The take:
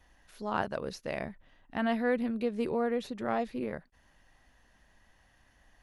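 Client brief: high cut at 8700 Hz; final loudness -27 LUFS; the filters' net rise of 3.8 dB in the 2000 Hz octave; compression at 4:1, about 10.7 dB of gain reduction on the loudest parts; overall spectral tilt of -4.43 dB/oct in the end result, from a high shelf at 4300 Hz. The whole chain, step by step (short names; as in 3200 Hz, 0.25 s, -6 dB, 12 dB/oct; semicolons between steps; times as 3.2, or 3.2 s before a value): LPF 8700 Hz; bell 2000 Hz +6 dB; high shelf 4300 Hz -7 dB; compressor 4:1, threshold -37 dBFS; gain +14.5 dB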